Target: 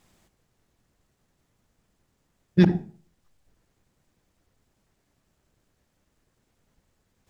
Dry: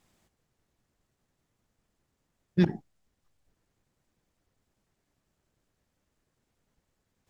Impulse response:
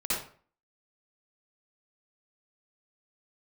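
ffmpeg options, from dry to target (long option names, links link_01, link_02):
-filter_complex "[0:a]asplit=2[link_01][link_02];[1:a]atrim=start_sample=2205,lowshelf=frequency=230:gain=11[link_03];[link_02][link_03]afir=irnorm=-1:irlink=0,volume=-25dB[link_04];[link_01][link_04]amix=inputs=2:normalize=0,volume=5.5dB"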